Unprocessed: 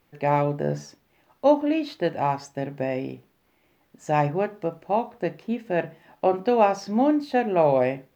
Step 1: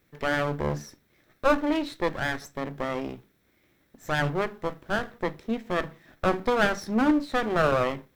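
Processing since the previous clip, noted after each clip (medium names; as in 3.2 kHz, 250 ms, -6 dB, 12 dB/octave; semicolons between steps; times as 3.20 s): comb filter that takes the minimum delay 0.52 ms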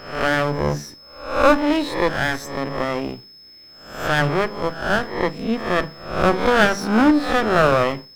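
reverse spectral sustain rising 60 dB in 0.59 s; whistle 5.2 kHz -49 dBFS; trim +6 dB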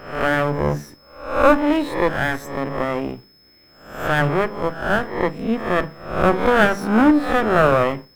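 peaking EQ 5 kHz -10 dB 1.2 oct; trim +1 dB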